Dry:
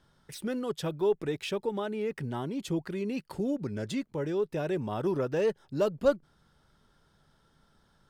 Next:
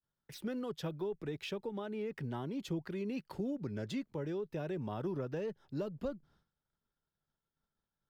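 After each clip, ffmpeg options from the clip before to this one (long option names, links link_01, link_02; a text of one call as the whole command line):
ffmpeg -i in.wav -filter_complex "[0:a]agate=range=-33dB:threshold=-52dB:ratio=3:detection=peak,equalizer=frequency=8800:width_type=o:width=0.67:gain=-8.5,acrossover=split=240[link_01][link_02];[link_02]acompressor=threshold=-33dB:ratio=10[link_03];[link_01][link_03]amix=inputs=2:normalize=0,volume=-4.5dB" out.wav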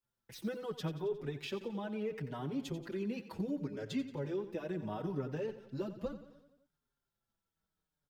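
ffmpeg -i in.wav -filter_complex "[0:a]aecho=1:1:89|178|267|356|445|534:0.224|0.125|0.0702|0.0393|0.022|0.0123,asplit=2[link_01][link_02];[link_02]adelay=5.3,afreqshift=-0.71[link_03];[link_01][link_03]amix=inputs=2:normalize=1,volume=3dB" out.wav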